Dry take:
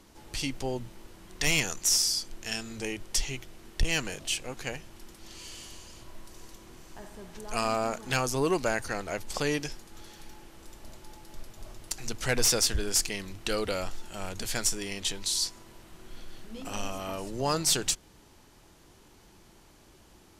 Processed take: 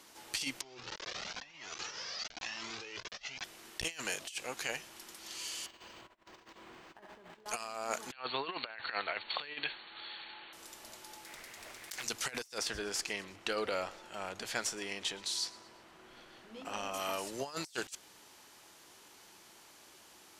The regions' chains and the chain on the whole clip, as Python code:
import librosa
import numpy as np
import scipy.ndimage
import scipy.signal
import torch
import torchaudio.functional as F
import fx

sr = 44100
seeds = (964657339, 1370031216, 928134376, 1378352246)

y = fx.chain(x, sr, fx.delta_mod(bps=32000, step_db=-34.5),
    fx.over_compress(threshold_db=-40.0, ratio=-1.0),
    fx.comb_cascade(direction='rising', hz=1.0), at=(0.61, 3.44))
y = fx.chain(y, sr, fx.over_compress(threshold_db=-47.0, ratio=-0.5),
    fx.air_absorb(metres=200.0),
    fx.resample_linear(factor=4), at=(5.66, 7.46))
y = fx.chain(y, sr, fx.brickwall_lowpass(high_hz=4500.0),
    fx.tilt_shelf(db=-6.0, hz=730.0), at=(8.12, 10.53))
y = fx.chain(y, sr, fx.peak_eq(hz=2000.0, db=13.5, octaves=0.27),
    fx.doppler_dist(depth_ms=0.8), at=(11.25, 12.03))
y = fx.chain(y, sr, fx.lowpass(hz=1500.0, slope=6),
    fx.echo_feedback(ms=117, feedback_pct=48, wet_db=-20.5), at=(12.58, 16.94))
y = fx.highpass(y, sr, hz=1000.0, slope=6)
y = fx.over_compress(y, sr, threshold_db=-37.0, ratio=-0.5)